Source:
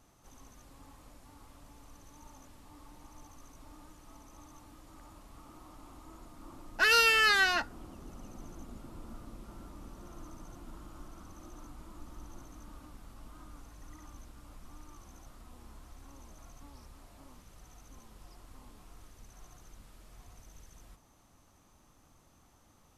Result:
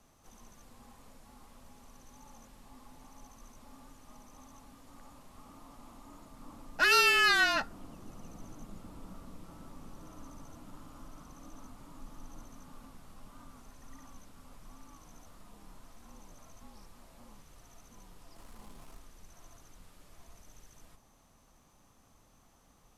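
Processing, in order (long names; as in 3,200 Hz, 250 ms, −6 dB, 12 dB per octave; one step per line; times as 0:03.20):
0:18.36–0:18.99: power curve on the samples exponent 0.7
frequency shifter −38 Hz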